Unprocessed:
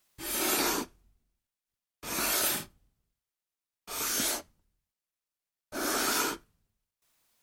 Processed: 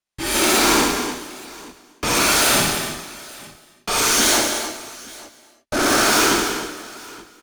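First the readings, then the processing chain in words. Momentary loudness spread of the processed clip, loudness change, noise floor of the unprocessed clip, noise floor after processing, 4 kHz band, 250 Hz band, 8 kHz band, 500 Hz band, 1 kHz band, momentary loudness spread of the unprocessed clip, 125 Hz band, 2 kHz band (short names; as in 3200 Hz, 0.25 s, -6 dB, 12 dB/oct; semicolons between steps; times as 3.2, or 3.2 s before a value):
21 LU, +12.0 dB, under -85 dBFS, -57 dBFS, +15.0 dB, +15.5 dB, +13.0 dB, +15.5 dB, +15.5 dB, 16 LU, +18.5 dB, +15.5 dB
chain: LPF 11000 Hz 24 dB/oct; high shelf 8400 Hz -6 dB; notch 7800 Hz, Q 19; sample leveller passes 5; AGC gain up to 14 dB; limiter -13 dBFS, peak gain reduction 9 dB; tapped delay 66/182/293/870 ms -3.5/-8/-10/-19.5 dB; non-linear reverb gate 0.37 s flat, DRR 9 dB; gain -3 dB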